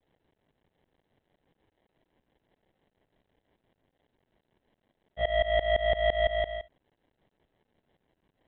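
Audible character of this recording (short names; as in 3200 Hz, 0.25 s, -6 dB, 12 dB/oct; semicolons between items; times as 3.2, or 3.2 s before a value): a quantiser's noise floor 12-bit, dither triangular; tremolo saw up 5.9 Hz, depth 95%; aliases and images of a low sample rate 1300 Hz, jitter 0%; µ-law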